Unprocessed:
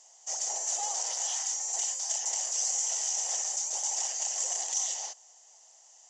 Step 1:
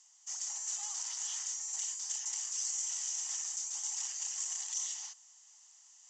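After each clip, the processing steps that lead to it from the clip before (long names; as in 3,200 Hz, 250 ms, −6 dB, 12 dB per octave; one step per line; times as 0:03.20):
Chebyshev band-pass filter 1,100–8,600 Hz, order 3
reversed playback
upward compression, threshold −48 dBFS
reversed playback
level −5.5 dB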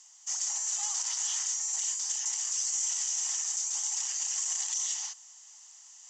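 brickwall limiter −29 dBFS, peak gain reduction 5 dB
level +7.5 dB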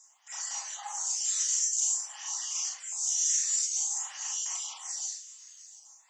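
time-frequency cells dropped at random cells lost 41%
four-comb reverb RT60 0.32 s, combs from 29 ms, DRR −2 dB
phaser with staggered stages 0.51 Hz
level +2.5 dB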